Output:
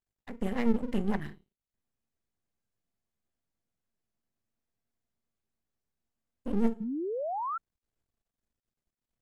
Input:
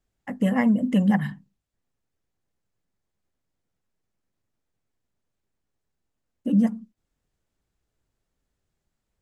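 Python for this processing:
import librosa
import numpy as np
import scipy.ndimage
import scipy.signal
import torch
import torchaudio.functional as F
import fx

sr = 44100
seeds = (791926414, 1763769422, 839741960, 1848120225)

y = fx.comb_fb(x, sr, f0_hz=230.0, decay_s=0.36, harmonics='odd', damping=0.0, mix_pct=70)
y = np.maximum(y, 0.0)
y = fx.spec_paint(y, sr, seeds[0], shape='rise', start_s=6.8, length_s=0.78, low_hz=200.0, high_hz=1400.0, level_db=-36.0)
y = y * librosa.db_to_amplitude(3.0)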